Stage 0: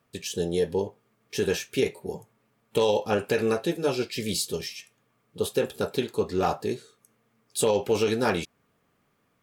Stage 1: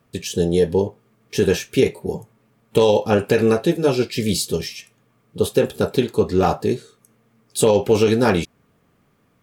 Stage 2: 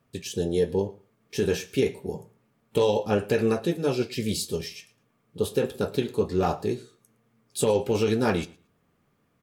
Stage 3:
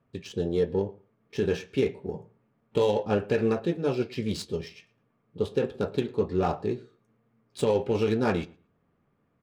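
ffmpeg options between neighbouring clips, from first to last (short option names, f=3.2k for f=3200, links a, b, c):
-af "lowshelf=f=380:g=7,volume=5dB"
-af "flanger=delay=7.5:depth=6.9:regen=-68:speed=0.26:shape=sinusoidal,aecho=1:1:112|224:0.0794|0.0135,volume=-3dB"
-af "adynamicsmooth=sensitivity=3.5:basefreq=2.6k,volume=-1.5dB"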